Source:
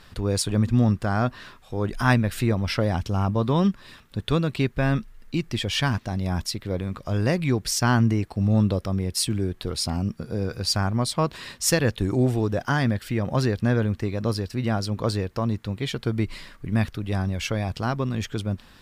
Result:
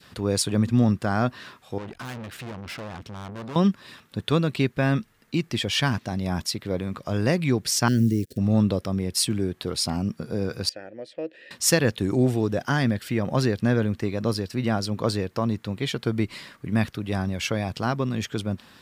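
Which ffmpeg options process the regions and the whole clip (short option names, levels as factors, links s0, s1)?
-filter_complex "[0:a]asettb=1/sr,asplit=3[s0][s1][s2];[s0]atrim=end=1.784[s3];[s1]atrim=start=1.78:end=3.56,asetpts=PTS-STARTPTS,afade=t=in:d=0.004:c=qsin,afade=t=out:st=1.776:d=0.004:c=qsin,bass=f=250:g=-1,treble=f=4000:g=-8,aeval=exprs='(tanh(50.1*val(0)+0.5)-tanh(0.5))/50.1':c=same[s4];[s2]atrim=start=3.556[s5];[s3][s4]acrossfade=d=0.004:c1=hsin:c2=qsin[s6];[s6][s5]acrossfade=d=0.004:c1=qsin:c2=hsin,asettb=1/sr,asplit=3[s7][s8][s9];[s7]atrim=end=7.884[s10];[s8]atrim=start=7.88:end=8.38,asetpts=PTS-STARTPTS,afade=t=in:d=0.004:c=qsin,afade=t=out:st=0.496:d=0.004:c=qsin,acrusher=bits=8:dc=4:mix=0:aa=0.000001,asuperstop=centerf=940:order=8:qfactor=0.75,equalizer=f=2300:t=o:w=1.2:g=-12[s11];[s9]atrim=start=8.376[s12];[s10][s11]acrossfade=d=0.004:c1=hsin:c2=qsin[s13];[s13][s12]acrossfade=d=0.004:c1=qsin:c2=hsin,asettb=1/sr,asplit=3[s14][s15][s16];[s14]atrim=end=10.694[s17];[s15]atrim=start=10.69:end=11.51,asetpts=PTS-STARTPTS,afade=t=in:d=0.004:c=qsin,afade=t=out:st=0.816:d=0.004:c=qsin,asplit=3[s18][s19][s20];[s18]bandpass=f=530:t=q:w=8,volume=1[s21];[s19]bandpass=f=1840:t=q:w=8,volume=0.501[s22];[s20]bandpass=f=2480:t=q:w=8,volume=0.355[s23];[s21][s22][s23]amix=inputs=3:normalize=0,equalizer=f=320:w=6.6:g=13[s24];[s16]atrim=start=11.506[s25];[s17][s24]acrossfade=d=0.004:c1=hsin:c2=qsin[s26];[s26][s25]acrossfade=d=0.004:c1=qsin:c2=hsin,highpass=120,adynamicequalizer=threshold=0.0158:dfrequency=1000:dqfactor=0.93:tfrequency=1000:tqfactor=0.93:attack=5:release=100:ratio=0.375:range=2:mode=cutabove:tftype=bell,volume=1.19"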